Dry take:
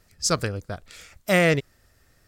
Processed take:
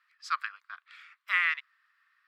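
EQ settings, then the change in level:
Chebyshev high-pass filter 1,100 Hz, order 5
high-frequency loss of the air 440 metres
+2.5 dB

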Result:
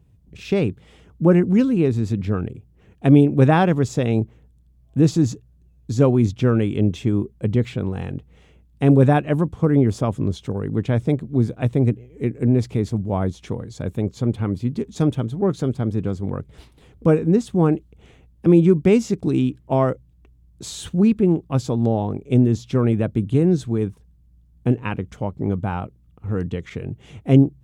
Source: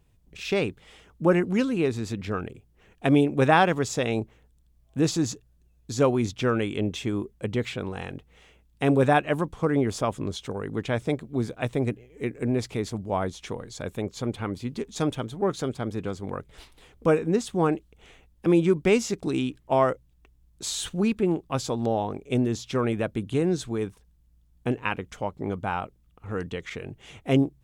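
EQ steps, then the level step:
high-pass filter 79 Hz
low-shelf EQ 160 Hz +6 dB
low-shelf EQ 450 Hz +12 dB
−3.0 dB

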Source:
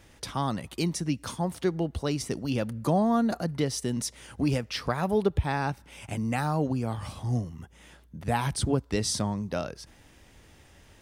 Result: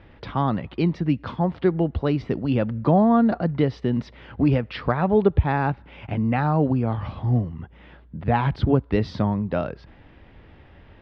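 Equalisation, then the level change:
low-pass filter 5,000 Hz 24 dB per octave
high-frequency loss of the air 400 metres
+7.5 dB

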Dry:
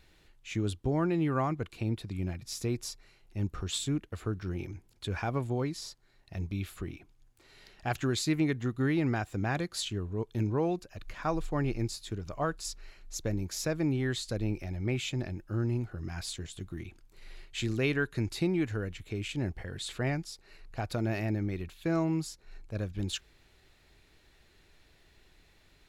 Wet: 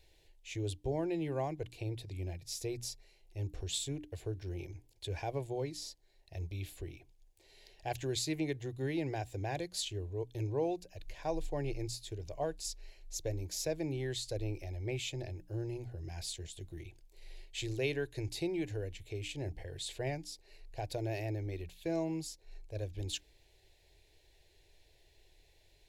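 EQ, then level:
mains-hum notches 60/120/180/240/300 Hz
phaser with its sweep stopped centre 530 Hz, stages 4
−1.5 dB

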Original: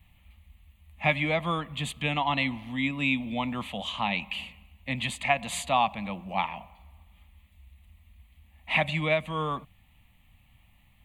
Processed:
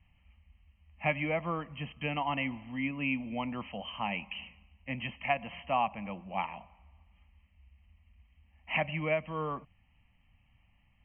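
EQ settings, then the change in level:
dynamic equaliser 430 Hz, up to +4 dB, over −42 dBFS, Q 0.99
linear-phase brick-wall low-pass 3,200 Hz
−6.5 dB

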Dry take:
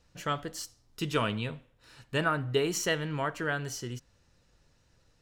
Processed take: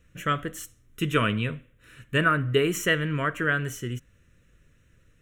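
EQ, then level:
dynamic equaliser 930 Hz, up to +5 dB, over −45 dBFS, Q 0.99
phaser with its sweep stopped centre 2,000 Hz, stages 4
+7.0 dB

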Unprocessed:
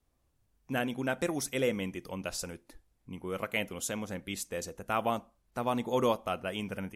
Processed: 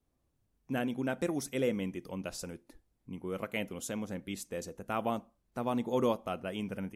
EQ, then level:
parametric band 240 Hz +6.5 dB 2.5 octaves
−5.5 dB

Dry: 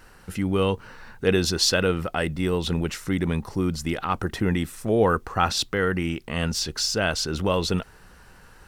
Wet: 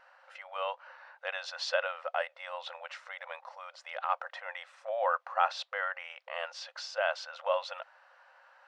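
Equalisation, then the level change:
linear-phase brick-wall high-pass 510 Hz
high-frequency loss of the air 62 metres
head-to-tape spacing loss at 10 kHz 25 dB
−1.5 dB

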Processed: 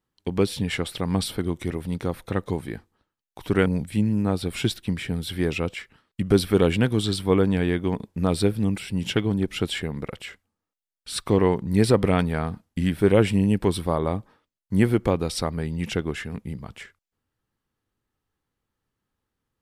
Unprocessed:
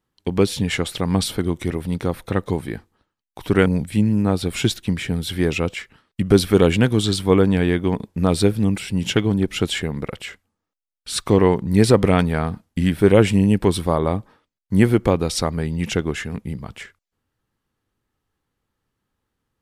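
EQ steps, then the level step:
dynamic equaliser 6,600 Hz, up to −7 dB, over −50 dBFS, Q 4.5
−4.5 dB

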